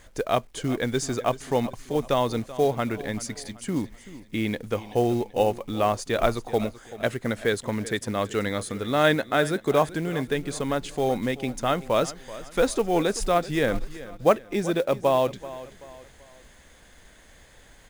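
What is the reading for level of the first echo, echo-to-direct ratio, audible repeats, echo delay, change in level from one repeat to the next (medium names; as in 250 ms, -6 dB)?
-16.5 dB, -15.5 dB, 3, 383 ms, -8.0 dB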